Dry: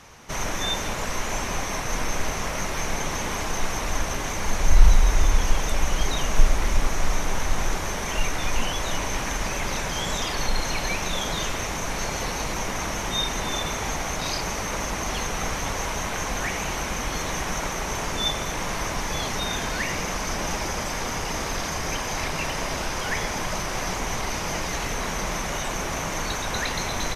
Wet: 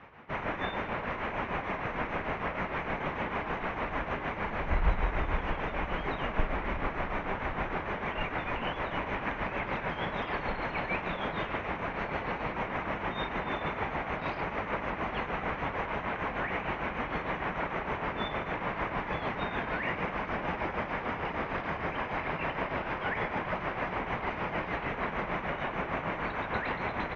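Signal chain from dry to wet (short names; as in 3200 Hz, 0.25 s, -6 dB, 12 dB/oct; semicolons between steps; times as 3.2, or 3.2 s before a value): inverse Chebyshev low-pass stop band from 9500 Hz, stop band 70 dB; tremolo triangle 6.6 Hz, depth 65%; HPF 120 Hz 6 dB/oct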